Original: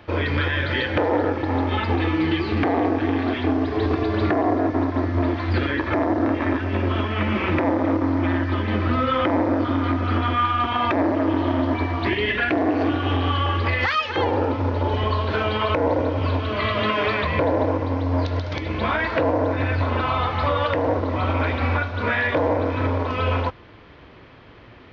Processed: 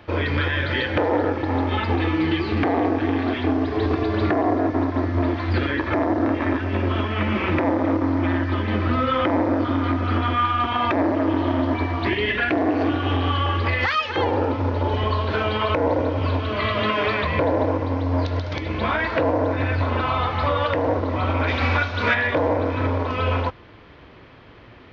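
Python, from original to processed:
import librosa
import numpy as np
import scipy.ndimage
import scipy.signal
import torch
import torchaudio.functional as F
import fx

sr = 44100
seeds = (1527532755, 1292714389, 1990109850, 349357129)

y = fx.high_shelf(x, sr, hz=fx.line((21.47, 2800.0), (22.13, 2000.0)), db=11.5, at=(21.47, 22.13), fade=0.02)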